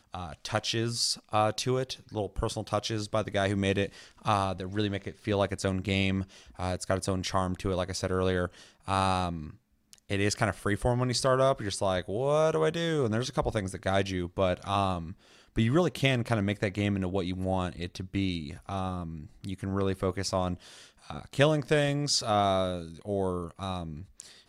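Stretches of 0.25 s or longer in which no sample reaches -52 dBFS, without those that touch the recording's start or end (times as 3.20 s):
9.56–9.93 s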